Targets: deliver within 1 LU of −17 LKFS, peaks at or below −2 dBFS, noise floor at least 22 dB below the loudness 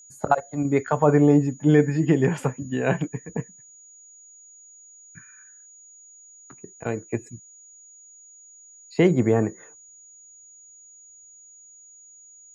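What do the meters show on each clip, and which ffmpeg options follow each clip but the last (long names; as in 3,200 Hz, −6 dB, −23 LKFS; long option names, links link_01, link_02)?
interfering tone 6,800 Hz; level of the tone −47 dBFS; integrated loudness −22.5 LKFS; sample peak −5.5 dBFS; target loudness −17.0 LKFS
→ -af "bandreject=frequency=6800:width=30"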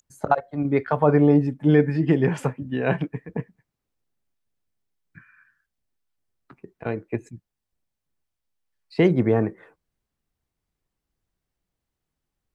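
interfering tone none found; integrated loudness −22.0 LKFS; sample peak −5.5 dBFS; target loudness −17.0 LKFS
→ -af "volume=5dB,alimiter=limit=-2dB:level=0:latency=1"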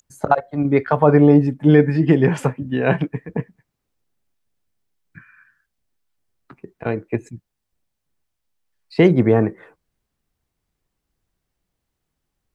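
integrated loudness −17.5 LKFS; sample peak −2.0 dBFS; background noise floor −79 dBFS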